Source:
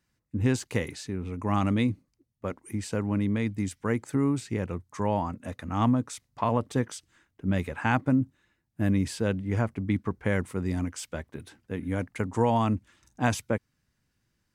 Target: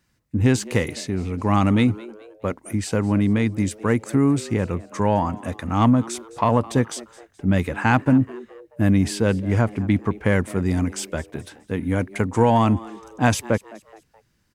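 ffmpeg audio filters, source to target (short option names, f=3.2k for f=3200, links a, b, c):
-filter_complex "[0:a]asplit=2[a][b];[b]asoftclip=type=tanh:threshold=-20dB,volume=-6dB[c];[a][c]amix=inputs=2:normalize=0,asplit=4[d][e][f][g];[e]adelay=212,afreqshift=110,volume=-20.5dB[h];[f]adelay=424,afreqshift=220,volume=-28dB[i];[g]adelay=636,afreqshift=330,volume=-35.6dB[j];[d][h][i][j]amix=inputs=4:normalize=0,volume=4.5dB"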